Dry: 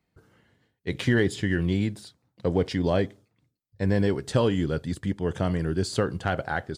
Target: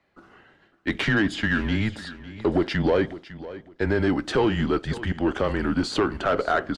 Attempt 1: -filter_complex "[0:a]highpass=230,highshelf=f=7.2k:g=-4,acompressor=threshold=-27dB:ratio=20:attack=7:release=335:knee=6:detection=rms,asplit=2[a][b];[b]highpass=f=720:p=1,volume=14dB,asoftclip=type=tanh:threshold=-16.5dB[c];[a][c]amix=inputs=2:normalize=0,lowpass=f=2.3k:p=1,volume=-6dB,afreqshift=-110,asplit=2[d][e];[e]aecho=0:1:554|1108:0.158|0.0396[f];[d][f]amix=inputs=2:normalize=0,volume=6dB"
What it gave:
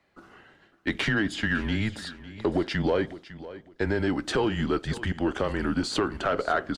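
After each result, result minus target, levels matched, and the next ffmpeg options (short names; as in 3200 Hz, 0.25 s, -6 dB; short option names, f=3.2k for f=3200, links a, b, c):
compressor: peak gain reduction +5.5 dB; 8000 Hz band +4.5 dB
-filter_complex "[0:a]highpass=230,highshelf=f=7.2k:g=-4,acompressor=threshold=-21dB:ratio=20:attack=7:release=335:knee=6:detection=rms,asplit=2[a][b];[b]highpass=f=720:p=1,volume=14dB,asoftclip=type=tanh:threshold=-16.5dB[c];[a][c]amix=inputs=2:normalize=0,lowpass=f=2.3k:p=1,volume=-6dB,afreqshift=-110,asplit=2[d][e];[e]aecho=0:1:554|1108:0.158|0.0396[f];[d][f]amix=inputs=2:normalize=0,volume=6dB"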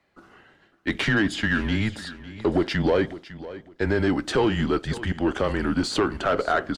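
8000 Hz band +4.0 dB
-filter_complex "[0:a]highpass=230,highshelf=f=7.2k:g=-13,acompressor=threshold=-21dB:ratio=20:attack=7:release=335:knee=6:detection=rms,asplit=2[a][b];[b]highpass=f=720:p=1,volume=14dB,asoftclip=type=tanh:threshold=-16.5dB[c];[a][c]amix=inputs=2:normalize=0,lowpass=f=2.3k:p=1,volume=-6dB,afreqshift=-110,asplit=2[d][e];[e]aecho=0:1:554|1108:0.158|0.0396[f];[d][f]amix=inputs=2:normalize=0,volume=6dB"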